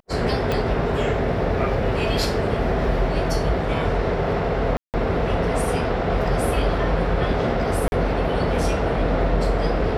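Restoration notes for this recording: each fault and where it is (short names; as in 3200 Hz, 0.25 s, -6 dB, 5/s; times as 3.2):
0.52 pop -10 dBFS
4.77–4.94 gap 0.168 s
7.88–7.92 gap 41 ms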